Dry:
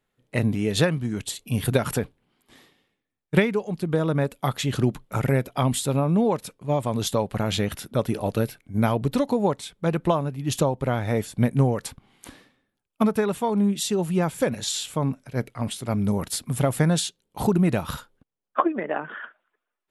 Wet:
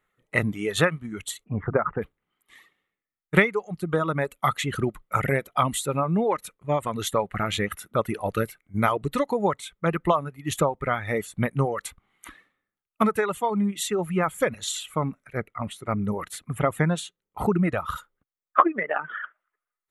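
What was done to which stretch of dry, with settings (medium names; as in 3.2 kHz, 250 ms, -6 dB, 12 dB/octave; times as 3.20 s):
1.44–2.02 s: low-pass 1.5 kHz 24 dB/octave
15.37–17.96 s: treble shelf 2.7 kHz -8.5 dB
whole clip: reverb removal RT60 1.6 s; graphic EQ with 31 bands 125 Hz -6 dB, 250 Hz -6 dB, 1.25 kHz +11 dB, 2 kHz +9 dB, 5 kHz -11 dB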